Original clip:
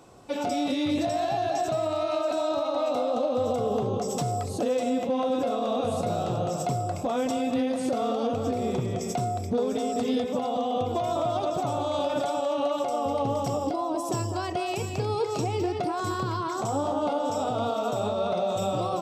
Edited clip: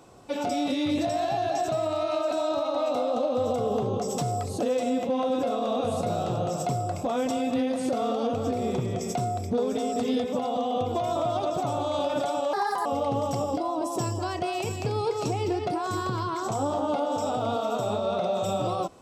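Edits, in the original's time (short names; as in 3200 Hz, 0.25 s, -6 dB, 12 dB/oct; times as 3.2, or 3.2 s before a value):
12.53–12.99 speed 141%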